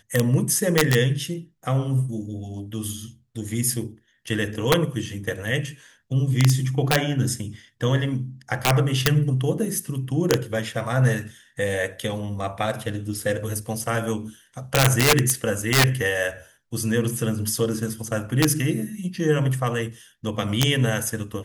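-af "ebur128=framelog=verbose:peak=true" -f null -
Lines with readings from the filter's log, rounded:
Integrated loudness:
  I:         -23.4 LUFS
  Threshold: -33.7 LUFS
Loudness range:
  LRA:         5.2 LU
  Threshold: -43.9 LUFS
  LRA low:   -26.8 LUFS
  LRA high:  -21.6 LUFS
True peak:
  Peak:       -3.9 dBFS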